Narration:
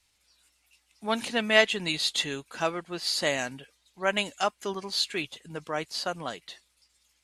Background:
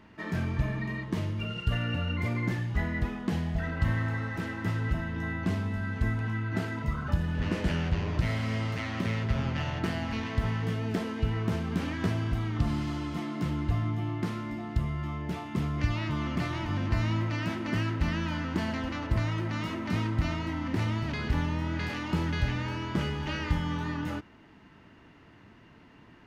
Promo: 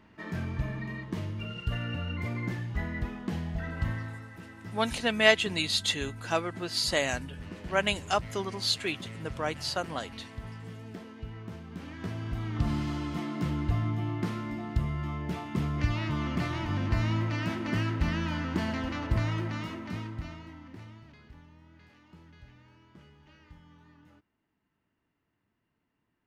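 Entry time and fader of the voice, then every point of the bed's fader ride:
3.70 s, −0.5 dB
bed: 0:03.84 −3.5 dB
0:04.27 −12.5 dB
0:11.68 −12.5 dB
0:12.70 0 dB
0:19.36 0 dB
0:21.42 −25 dB

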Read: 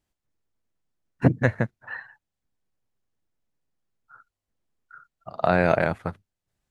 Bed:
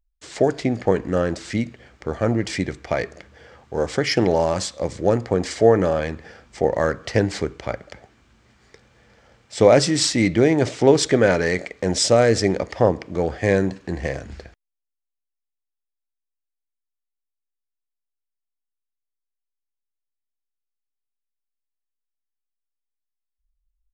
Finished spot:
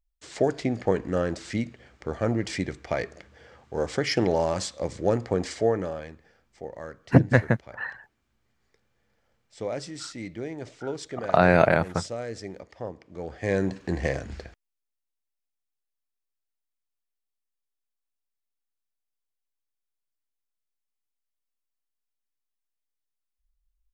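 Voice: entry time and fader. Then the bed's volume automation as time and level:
5.90 s, +2.0 dB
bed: 0:05.42 −5 dB
0:06.32 −18.5 dB
0:13.00 −18.5 dB
0:13.81 −1 dB

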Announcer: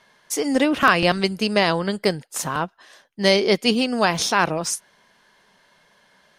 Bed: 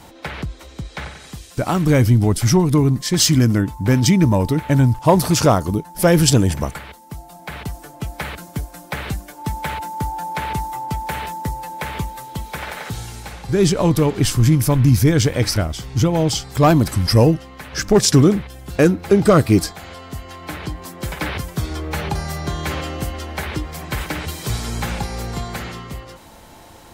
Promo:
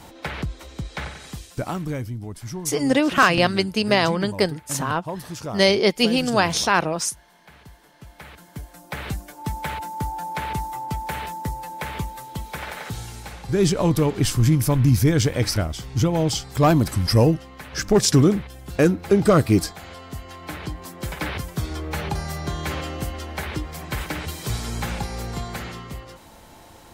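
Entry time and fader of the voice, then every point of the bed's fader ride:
2.35 s, 0.0 dB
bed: 0:01.39 −1 dB
0:02.11 −18 dB
0:07.95 −18 dB
0:09.07 −3.5 dB

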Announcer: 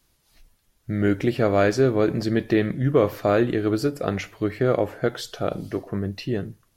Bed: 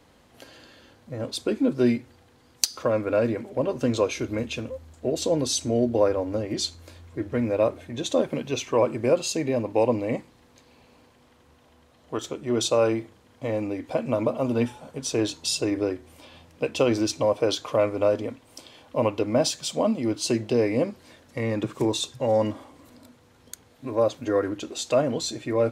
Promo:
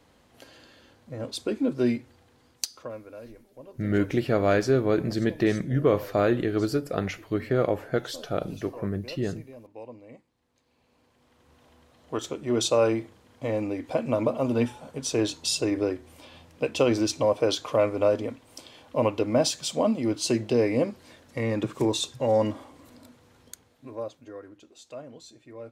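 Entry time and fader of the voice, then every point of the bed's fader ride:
2.90 s, −3.0 dB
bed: 0:02.46 −3 dB
0:03.17 −21 dB
0:10.23 −21 dB
0:11.62 −0.5 dB
0:23.37 −0.5 dB
0:24.38 −19 dB

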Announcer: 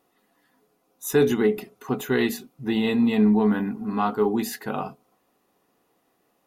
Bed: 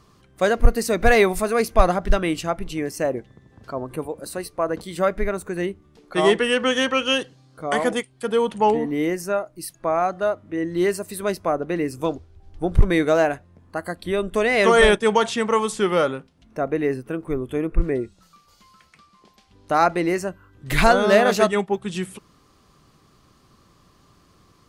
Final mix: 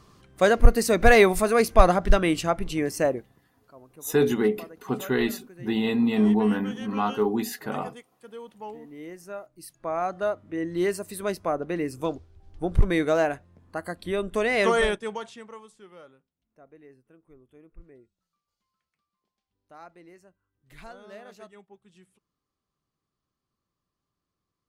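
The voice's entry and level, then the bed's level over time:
3.00 s, −2.0 dB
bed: 0:03.07 0 dB
0:03.53 −21 dB
0:08.77 −21 dB
0:10.19 −4.5 dB
0:14.63 −4.5 dB
0:15.79 −29 dB

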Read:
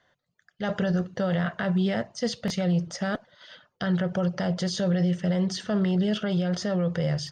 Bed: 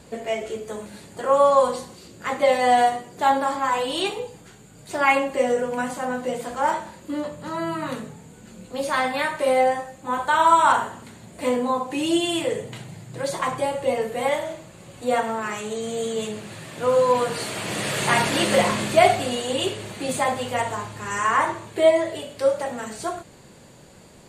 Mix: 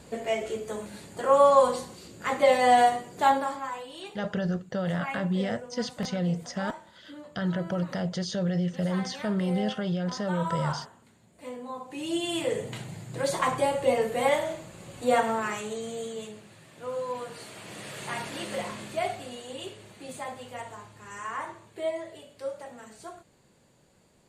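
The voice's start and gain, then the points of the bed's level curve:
3.55 s, −3.5 dB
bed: 0:03.26 −2 dB
0:03.89 −17 dB
0:11.56 −17 dB
0:12.67 −1 dB
0:15.36 −1 dB
0:16.53 −14.5 dB

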